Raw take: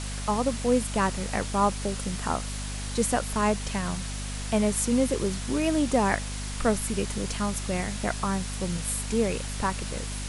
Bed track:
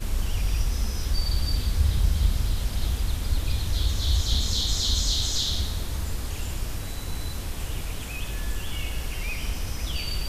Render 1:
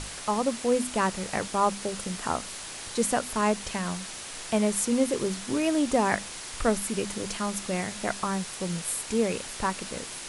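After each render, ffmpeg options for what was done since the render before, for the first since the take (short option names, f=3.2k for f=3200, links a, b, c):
-af "bandreject=f=50:t=h:w=6,bandreject=f=100:t=h:w=6,bandreject=f=150:t=h:w=6,bandreject=f=200:t=h:w=6,bandreject=f=250:t=h:w=6"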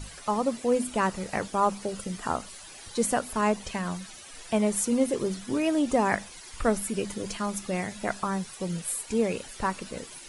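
-af "afftdn=nr=13:nf=-40"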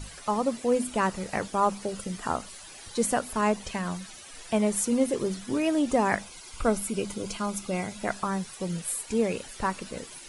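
-filter_complex "[0:a]asettb=1/sr,asplit=3[a][b][c];[a]atrim=end=6.214[d];[b]atrim=start=6.21:end=7.99,asetpts=PTS-STARTPTS,afade=t=in:d=0.004:c=qsin,afade=t=out:st=1.776:d=0.004:c=qsin,asuperstop=centerf=1800:order=4:qfactor=5.9[e];[c]atrim=start=7.986[f];[d][e]acrossfade=d=0.004:c1=hsin:c2=qsin[g];[g][f]acrossfade=d=0.004:c1=qsin:c2=hsin"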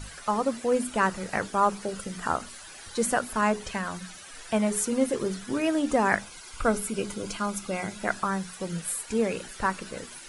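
-af "equalizer=f=1.5k:w=2.3:g=6,bandreject=f=60:t=h:w=6,bandreject=f=120:t=h:w=6,bandreject=f=180:t=h:w=6,bandreject=f=240:t=h:w=6,bandreject=f=300:t=h:w=6,bandreject=f=360:t=h:w=6,bandreject=f=420:t=h:w=6"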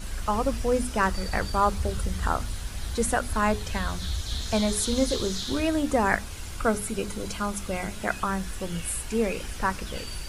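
-filter_complex "[1:a]volume=-7.5dB[a];[0:a][a]amix=inputs=2:normalize=0"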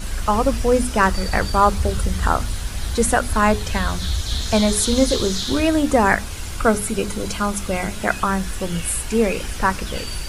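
-af "volume=7.5dB,alimiter=limit=-1dB:level=0:latency=1"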